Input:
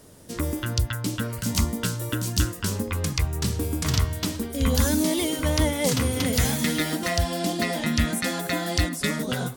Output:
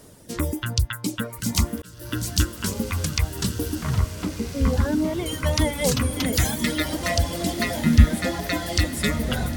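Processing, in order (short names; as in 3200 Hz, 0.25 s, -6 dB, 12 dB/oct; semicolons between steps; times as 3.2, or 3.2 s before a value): reverb removal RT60 2 s; 3.75–5.26 LPF 1600 Hz 12 dB/oct; 7.77–8.44 tilt -2.5 dB/oct; diffused feedback echo 1.356 s, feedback 56%, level -10 dB; 1.82–2.24 fade in; gain +2.5 dB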